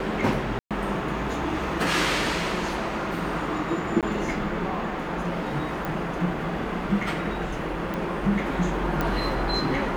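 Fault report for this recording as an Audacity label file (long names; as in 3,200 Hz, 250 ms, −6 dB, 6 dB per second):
0.590000	0.710000	drop-out 117 ms
4.010000	4.030000	drop-out 17 ms
5.850000	5.850000	click
7.940000	7.940000	click −17 dBFS
9.010000	9.010000	click −12 dBFS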